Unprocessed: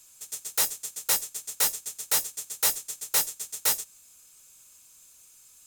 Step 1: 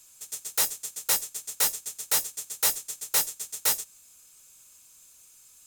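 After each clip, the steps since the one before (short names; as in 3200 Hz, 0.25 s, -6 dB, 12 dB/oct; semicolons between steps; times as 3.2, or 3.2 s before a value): nothing audible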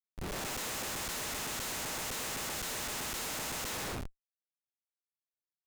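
time blur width 0.495 s; Schmitt trigger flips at -36.5 dBFS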